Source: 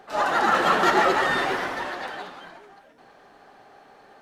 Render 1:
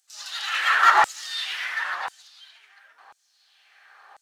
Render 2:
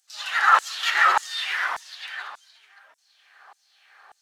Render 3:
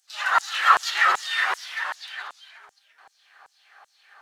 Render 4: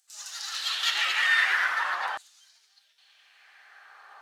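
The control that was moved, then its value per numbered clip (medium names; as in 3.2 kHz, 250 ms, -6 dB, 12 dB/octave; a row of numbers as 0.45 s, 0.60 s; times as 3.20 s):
LFO high-pass, rate: 0.96 Hz, 1.7 Hz, 2.6 Hz, 0.46 Hz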